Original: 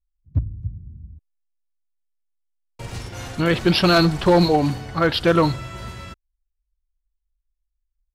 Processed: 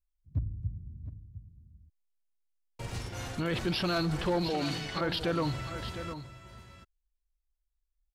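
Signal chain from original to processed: 4.5–5.01 weighting filter D; limiter -18 dBFS, peak gain reduction 10.5 dB; echo 0.707 s -11 dB; gain -5.5 dB

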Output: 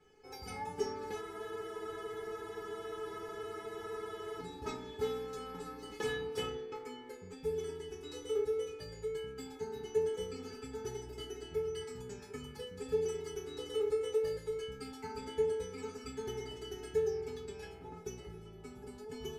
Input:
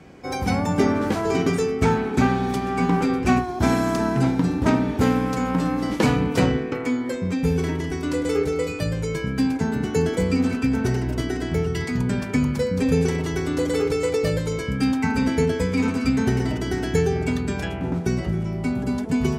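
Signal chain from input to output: resonator 430 Hz, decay 0.25 s, harmonics all, mix 100%; spectral freeze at 1.24, 3.17 s; gain +1 dB

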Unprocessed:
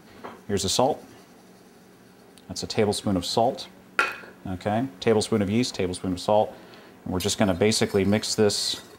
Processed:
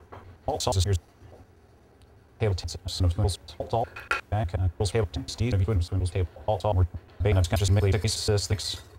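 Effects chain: slices in reverse order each 0.12 s, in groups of 4; resonant low shelf 120 Hz +13 dB, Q 3; mismatched tape noise reduction decoder only; gain -4.5 dB

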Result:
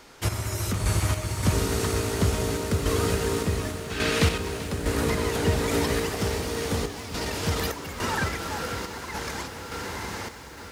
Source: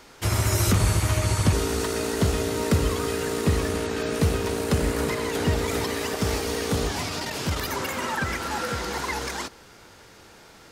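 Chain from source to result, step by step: diffused feedback echo 0.965 s, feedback 62%, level -7 dB; random-step tremolo, depth 70%; 3.9–4.38 bell 2800 Hz +10.5 dB 2.1 oct; lo-fi delay 0.388 s, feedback 35%, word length 7-bit, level -14 dB

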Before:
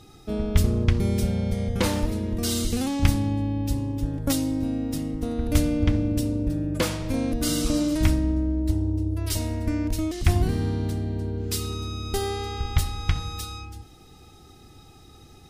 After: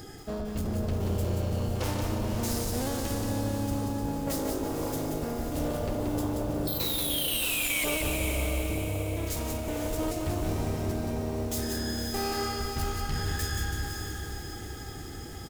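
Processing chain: reverse; compressor, threshold -32 dBFS, peak gain reduction 18.5 dB; reverse; echo 0.148 s -14 dB; painted sound fall, 6.67–7.84, 1600–3300 Hz -23 dBFS; in parallel at -4.5 dB: sine folder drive 12 dB, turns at -18.5 dBFS; on the sum: formant shift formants +5 st; diffused feedback echo 0.523 s, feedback 48%, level -5.5 dB; lo-fi delay 0.18 s, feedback 35%, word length 7-bit, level -4 dB; gain -8 dB

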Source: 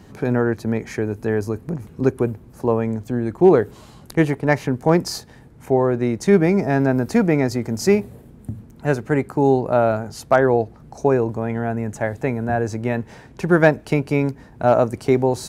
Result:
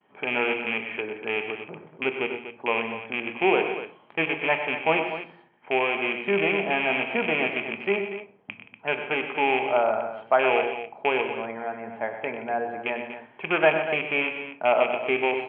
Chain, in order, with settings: rattling part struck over -19 dBFS, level -12 dBFS; Bessel high-pass 300 Hz, order 2; expander -44 dBFS; rippled Chebyshev low-pass 3300 Hz, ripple 6 dB; low shelf 500 Hz -8.5 dB; tapped delay 98/123/175/241 ms -11/-12/-17/-11.5 dB; reverb RT60 0.45 s, pre-delay 5 ms, DRR 9.5 dB

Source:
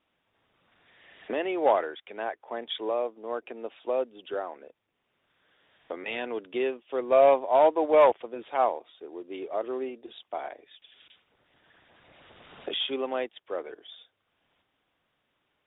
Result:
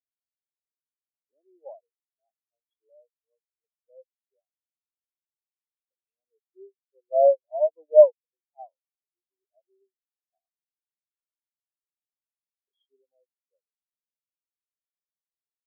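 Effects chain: spectral expander 4:1; gain +6 dB

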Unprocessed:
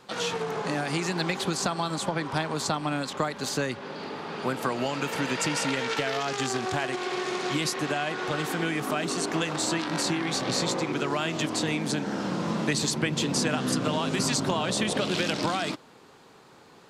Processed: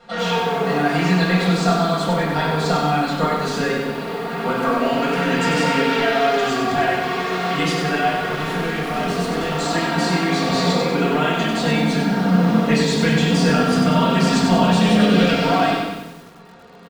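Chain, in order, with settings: LPF 2500 Hz 6 dB/oct; comb 4.3 ms, depth 69%; 8.07–9.51 hard clip -29 dBFS, distortion -19 dB; reverb RT60 0.95 s, pre-delay 6 ms, DRR -4 dB; lo-fi delay 95 ms, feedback 55%, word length 7-bit, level -5 dB

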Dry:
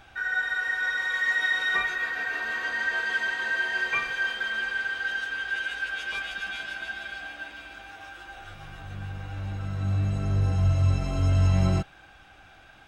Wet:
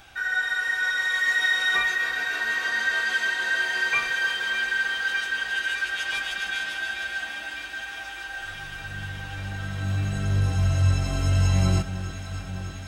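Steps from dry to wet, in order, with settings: high shelf 3600 Hz +11.5 dB; on a send: echo with dull and thin repeats by turns 0.302 s, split 1100 Hz, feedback 90%, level -11 dB

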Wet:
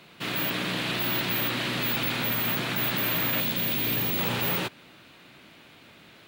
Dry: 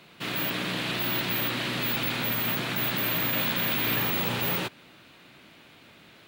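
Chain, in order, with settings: 3.4–4.19 bell 1300 Hz -7.5 dB 1.8 oct; hard clip -21.5 dBFS, distortion -23 dB; gain +1 dB

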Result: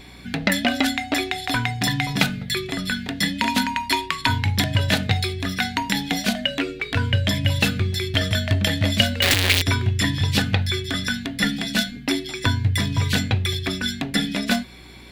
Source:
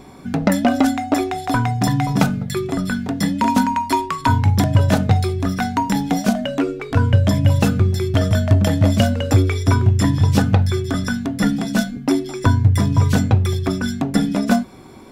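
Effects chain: 9.22–9.62 infinite clipping; band shelf 2700 Hz +12.5 dB; hum 60 Hz, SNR 24 dB; high shelf 4300 Hz +9 dB; gain -7 dB

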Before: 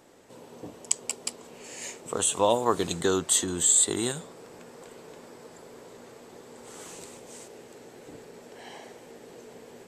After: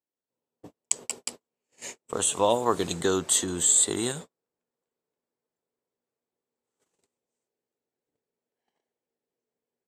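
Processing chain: gate -38 dBFS, range -42 dB

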